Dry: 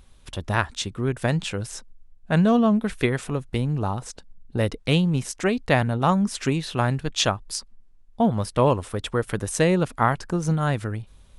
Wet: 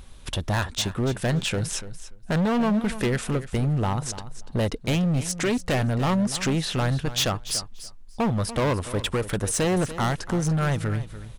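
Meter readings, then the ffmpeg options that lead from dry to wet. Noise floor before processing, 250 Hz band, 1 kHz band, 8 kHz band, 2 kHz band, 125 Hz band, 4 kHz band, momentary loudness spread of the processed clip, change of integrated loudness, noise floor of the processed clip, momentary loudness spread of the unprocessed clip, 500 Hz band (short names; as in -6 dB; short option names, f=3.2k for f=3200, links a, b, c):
-52 dBFS, -2.0 dB, -4.0 dB, +3.5 dB, -2.0 dB, -0.5 dB, +1.0 dB, 8 LU, -1.5 dB, -43 dBFS, 12 LU, -2.5 dB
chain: -filter_complex "[0:a]asplit=2[a][b];[b]acompressor=threshold=-31dB:ratio=6,volume=2.5dB[c];[a][c]amix=inputs=2:normalize=0,asoftclip=type=hard:threshold=-20dB,aecho=1:1:290|580:0.2|0.0299"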